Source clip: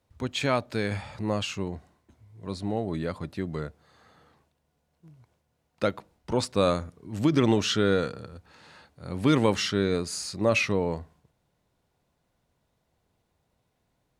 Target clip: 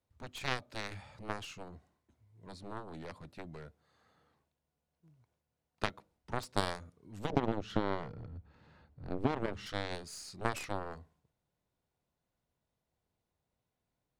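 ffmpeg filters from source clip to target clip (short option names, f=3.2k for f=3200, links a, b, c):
-filter_complex "[0:a]asplit=3[a][b][c];[a]afade=t=out:st=7.29:d=0.02[d];[b]aemphasis=mode=reproduction:type=riaa,afade=t=in:st=7.29:d=0.02,afade=t=out:st=9.65:d=0.02[e];[c]afade=t=in:st=9.65:d=0.02[f];[d][e][f]amix=inputs=3:normalize=0,acompressor=threshold=-21dB:ratio=4,aeval=exprs='0.266*(cos(1*acos(clip(val(0)/0.266,-1,1)))-cos(1*PI/2))+0.106*(cos(3*acos(clip(val(0)/0.266,-1,1)))-cos(3*PI/2))+0.00531*(cos(6*acos(clip(val(0)/0.266,-1,1)))-cos(6*PI/2))+0.00211*(cos(7*acos(clip(val(0)/0.266,-1,1)))-cos(7*PI/2))':c=same"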